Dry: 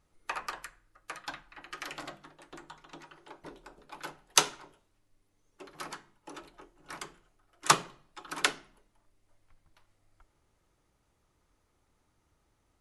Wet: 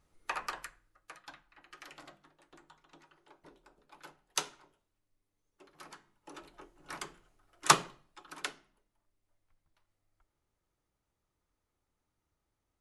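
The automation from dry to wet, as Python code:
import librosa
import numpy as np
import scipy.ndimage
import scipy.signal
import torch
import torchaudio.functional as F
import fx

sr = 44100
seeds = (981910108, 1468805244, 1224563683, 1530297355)

y = fx.gain(x, sr, db=fx.line((0.64, -0.5), (1.2, -10.5), (5.82, -10.5), (6.62, 0.0), (7.84, 0.0), (8.43, -11.0)))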